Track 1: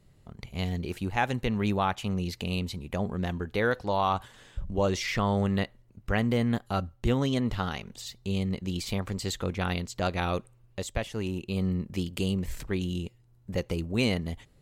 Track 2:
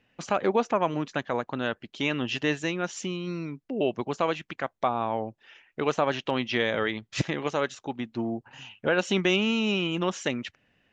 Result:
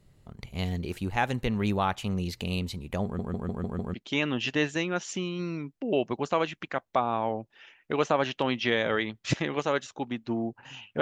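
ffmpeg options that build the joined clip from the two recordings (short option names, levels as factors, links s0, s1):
-filter_complex "[0:a]apad=whole_dur=11.01,atrim=end=11.01,asplit=6[s0][s1][s2][s3][s4][s5];[s0]atrim=end=3.192[s6];[s1]atrim=start=3.038:end=3.192[s7];[s2]atrim=start=3.038:end=3.192[s8];[s3]atrim=start=3.038:end=3.192[s9];[s4]atrim=start=3.038:end=3.192[s10];[s5]atrim=start=3.038:end=3.192[s11];[1:a]atrim=start=1.818:end=8.89[s12];[s6][s7]acrossfade=d=0.004:c1=hsin:c2=hsin[s13];[s13][s8]acrossfade=d=0.004:c1=hsin:c2=hsin[s14];[s14][s9]acrossfade=d=0.004:c1=hsin:c2=hsin[s15];[s15][s10]acrossfade=d=0.004:c1=hsin:c2=hsin[s16];[s16][s11]acrossfade=d=0.004:c1=hsin:c2=hsin[s17];[s17][s12]acrossfade=d=0.004:c1=hsin:c2=hsin"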